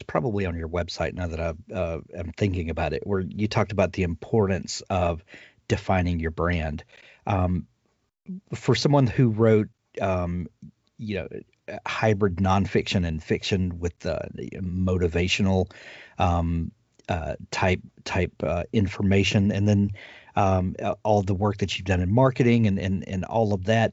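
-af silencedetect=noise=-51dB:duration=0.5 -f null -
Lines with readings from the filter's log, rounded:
silence_start: 7.66
silence_end: 8.26 | silence_duration: 0.61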